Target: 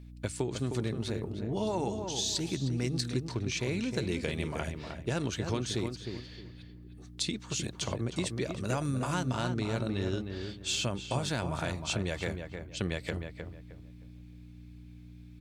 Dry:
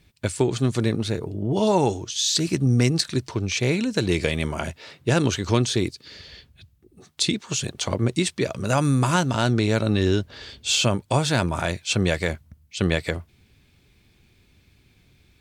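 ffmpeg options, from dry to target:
-filter_complex "[0:a]acompressor=threshold=-22dB:ratio=3,aeval=exprs='val(0)+0.0112*(sin(2*PI*60*n/s)+sin(2*PI*2*60*n/s)/2+sin(2*PI*3*60*n/s)/3+sin(2*PI*4*60*n/s)/4+sin(2*PI*5*60*n/s)/5)':c=same,asplit=2[a][b];[b]adelay=310,lowpass=f=2k:p=1,volume=-6dB,asplit=2[c][d];[d]adelay=310,lowpass=f=2k:p=1,volume=0.28,asplit=2[e][f];[f]adelay=310,lowpass=f=2k:p=1,volume=0.28,asplit=2[g][h];[h]adelay=310,lowpass=f=2k:p=1,volume=0.28[i];[a][c][e][g][i]amix=inputs=5:normalize=0,volume=-7.5dB"

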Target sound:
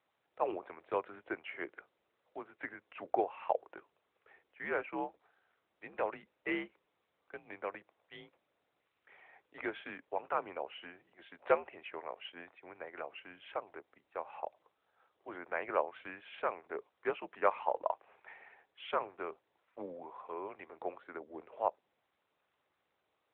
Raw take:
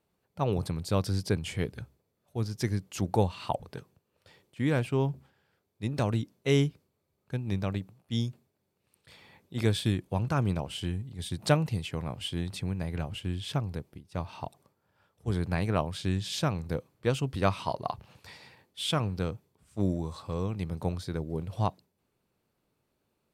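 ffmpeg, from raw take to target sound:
-filter_complex "[0:a]asettb=1/sr,asplit=3[a][b][c];[a]atrim=end=12.324[d];[b]atrim=start=12.32:end=12.93,asetpts=PTS-STARTPTS,afade=t=in:d=0.004:c=qsin,afade=t=out:st=0.606:d=0.004:c=qsin,agate=range=-33dB:threshold=-31dB:ratio=3:detection=peak[e];[c]atrim=start=12.926[f];[d][e]acrossfade=d=0.004:c1=hsin:c2=qsin[g];[g][f]acrossfade=d=0.004:c1=qsin:c2=hsin,highpass=f=550:t=q:w=0.5412,highpass=f=550:t=q:w=1.307,lowpass=f=2.5k:t=q:w=0.5176,lowpass=f=2.5k:t=q:w=0.7071,lowpass=f=2.5k:t=q:w=1.932,afreqshift=-83" -ar 8000 -c:a libopencore_amrnb -b:a 12200

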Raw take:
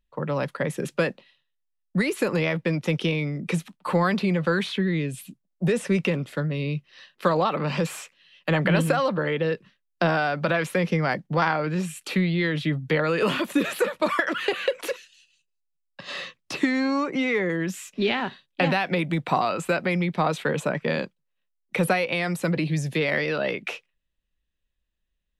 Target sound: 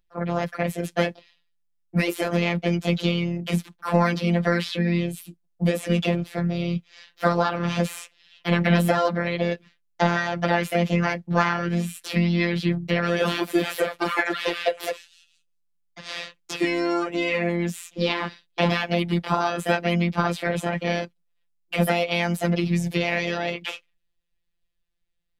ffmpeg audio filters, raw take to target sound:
-filter_complex "[0:a]asplit=3[a][b][c];[b]asetrate=22050,aresample=44100,atempo=2,volume=-18dB[d];[c]asetrate=55563,aresample=44100,atempo=0.793701,volume=-2dB[e];[a][d][e]amix=inputs=3:normalize=0,afftfilt=real='hypot(re,im)*cos(PI*b)':imag='0':win_size=1024:overlap=0.75,volume=1.5dB"

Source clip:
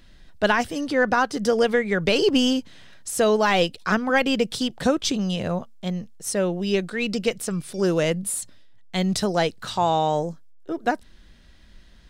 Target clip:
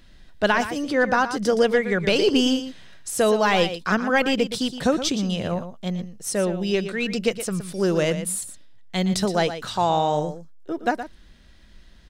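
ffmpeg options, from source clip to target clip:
-af "aecho=1:1:118:0.282"

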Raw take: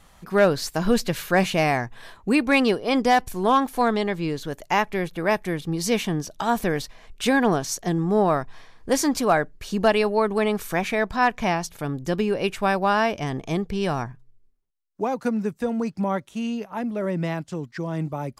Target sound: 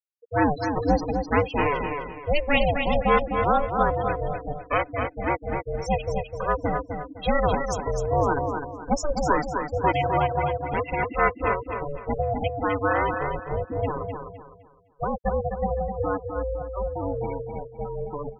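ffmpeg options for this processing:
-af "aeval=exprs='val(0)*sin(2*PI*290*n/s)':c=same,aecho=1:1:4:0.36,afftfilt=real='re*gte(hypot(re,im),0.0891)':imag='im*gte(hypot(re,im),0.0891)':win_size=1024:overlap=0.75,aecho=1:1:255|510|765|1020:0.501|0.16|0.0513|0.0164"

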